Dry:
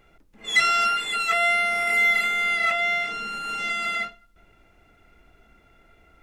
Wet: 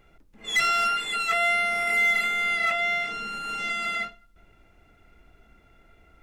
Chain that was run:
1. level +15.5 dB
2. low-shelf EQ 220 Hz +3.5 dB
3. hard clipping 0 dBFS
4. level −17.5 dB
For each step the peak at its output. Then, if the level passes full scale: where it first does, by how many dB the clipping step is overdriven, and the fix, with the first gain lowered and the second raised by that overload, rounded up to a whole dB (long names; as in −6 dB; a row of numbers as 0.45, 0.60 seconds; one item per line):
+6.5, +6.5, 0.0, −17.5 dBFS
step 1, 6.5 dB
step 1 +8.5 dB, step 4 −10.5 dB